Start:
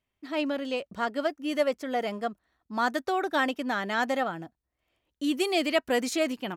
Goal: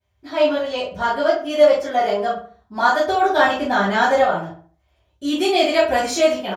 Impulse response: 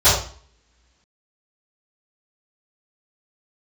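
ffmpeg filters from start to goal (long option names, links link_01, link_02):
-filter_complex "[0:a]asettb=1/sr,asplit=3[link_01][link_02][link_03];[link_01]atrim=end=3.434[link_04];[link_02]atrim=start=3.43:end=4.18,asetpts=PTS-STARTPTS,afade=type=in:duration=0.004:curve=qsin,afade=type=out:start_time=0.746:duration=0.004:curve=qsin,lowshelf=frequency=240:gain=8.5[link_05];[link_03]atrim=start=4.176[link_06];[link_04][link_05]acrossfade=duration=0.004:curve1=hsin:curve2=qsin[link_07];[link_07][link_06]acrossfade=duration=0.004:curve1=qsin:curve2=hsin,asplit=2[link_08][link_09];[link_09]adelay=71,lowpass=frequency=2100:poles=1,volume=-9dB,asplit=2[link_10][link_11];[link_11]adelay=71,lowpass=frequency=2100:poles=1,volume=0.38,asplit=2[link_12][link_13];[link_13]adelay=71,lowpass=frequency=2100:poles=1,volume=0.38,asplit=2[link_14][link_15];[link_15]adelay=71,lowpass=frequency=2100:poles=1,volume=0.38[link_16];[link_08][link_10][link_12][link_14][link_16]amix=inputs=5:normalize=0[link_17];[1:a]atrim=start_sample=2205,atrim=end_sample=3528[link_18];[link_17][link_18]afir=irnorm=-1:irlink=0,volume=-13.5dB"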